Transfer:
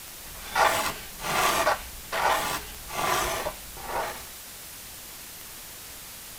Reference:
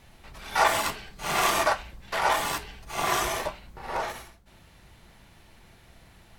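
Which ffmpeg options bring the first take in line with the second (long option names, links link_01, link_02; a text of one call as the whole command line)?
ffmpeg -i in.wav -af "adeclick=threshold=4,afwtdn=0.0089" out.wav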